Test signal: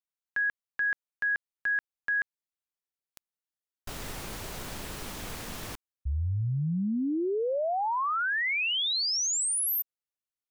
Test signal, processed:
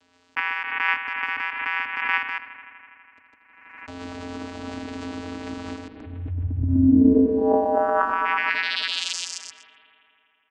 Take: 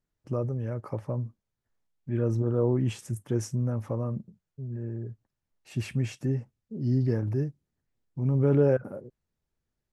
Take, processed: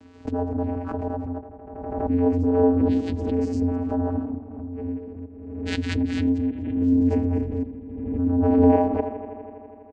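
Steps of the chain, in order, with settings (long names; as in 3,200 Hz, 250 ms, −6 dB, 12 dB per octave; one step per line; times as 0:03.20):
delay that plays each chunk backwards 125 ms, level 0 dB
Butterworth low-pass 5,900 Hz 36 dB per octave
comb filter 3.8 ms, depth 74%
in parallel at −4 dB: dead-zone distortion −45 dBFS
on the sum: channel vocoder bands 8, square 88.3 Hz
on a send: bucket-brigade delay 82 ms, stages 2,048, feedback 83%, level −11.5 dB
on the sum: background raised ahead of every attack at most 43 dB per second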